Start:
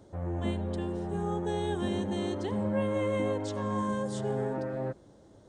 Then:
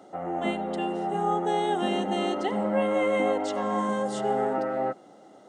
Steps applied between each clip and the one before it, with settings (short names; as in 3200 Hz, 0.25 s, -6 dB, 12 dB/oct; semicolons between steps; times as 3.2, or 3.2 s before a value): HPF 190 Hz 24 dB/oct; small resonant body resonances 760/1300/2000/2800 Hz, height 15 dB, ringing for 35 ms; gain +3.5 dB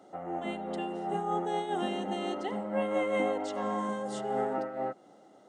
noise-modulated level, depth 65%; gain -2.5 dB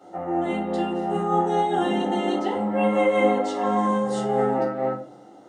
shoebox room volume 230 m³, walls furnished, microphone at 4.3 m